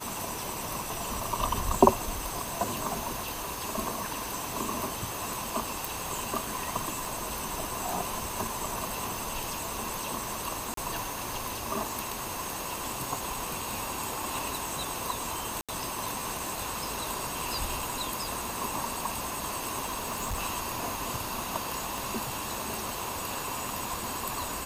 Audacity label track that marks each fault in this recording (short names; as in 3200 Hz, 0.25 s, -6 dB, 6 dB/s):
5.850000	5.850000	pop
7.050000	7.050000	pop
10.740000	10.770000	gap 33 ms
15.610000	15.690000	gap 76 ms
19.840000	20.400000	clipped -28 dBFS
21.980000	21.980000	pop